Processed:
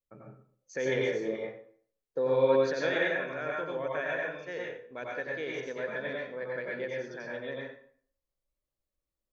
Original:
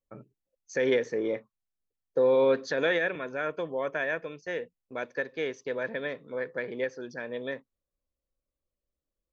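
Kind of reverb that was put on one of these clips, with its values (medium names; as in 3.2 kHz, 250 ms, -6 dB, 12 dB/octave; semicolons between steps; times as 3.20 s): plate-style reverb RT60 0.53 s, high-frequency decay 0.8×, pre-delay 80 ms, DRR -3.5 dB; trim -6 dB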